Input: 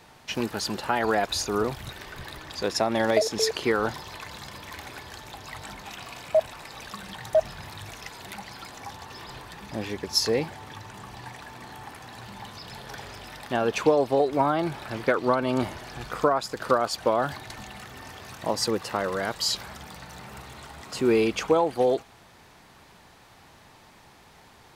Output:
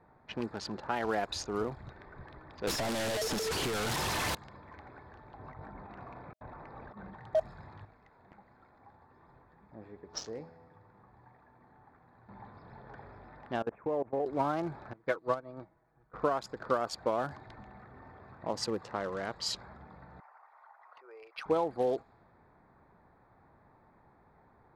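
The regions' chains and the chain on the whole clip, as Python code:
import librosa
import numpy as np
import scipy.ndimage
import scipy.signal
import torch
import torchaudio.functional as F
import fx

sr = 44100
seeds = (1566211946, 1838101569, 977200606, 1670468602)

y = fx.chain(x, sr, fx.clip_1bit(),
    fx.low_shelf(hz=300.0, db=2.5),
    fx.band_squash(depth_pct=100), at=(2.67, 4.35))
y = fx.chain(y, sr, fx.peak_eq(hz=13000.0, db=-12.5, octaves=2.9),
    fx.over_compress(threshold_db=-43.0, ratio=-0.5), at=(5.39, 7.15))
y = fx.chain(y, sr, fx.high_shelf(hz=6000.0, db=8.5),
    fx.comb_fb(f0_hz=83.0, decay_s=1.6, harmonics='all', damping=0.0, mix_pct=70),
    fx.resample_bad(factor=4, down='none', up='hold'), at=(7.85, 12.29))
y = fx.chain(y, sr, fx.steep_lowpass(hz=2500.0, slope=36),
    fx.level_steps(step_db=23), at=(13.62, 14.26))
y = fx.chain(y, sr, fx.comb(ms=6.2, depth=0.45),
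    fx.upward_expand(threshold_db=-32.0, expansion=2.5), at=(14.93, 16.14))
y = fx.chain(y, sr, fx.envelope_sharpen(power=1.5),
    fx.cheby2_highpass(hz=230.0, order=4, stop_db=60),
    fx.resample_bad(factor=6, down='filtered', up='hold'), at=(20.2, 21.46))
y = fx.wiener(y, sr, points=15)
y = fx.env_lowpass(y, sr, base_hz=2300.0, full_db=-20.5)
y = y * librosa.db_to_amplitude(-7.5)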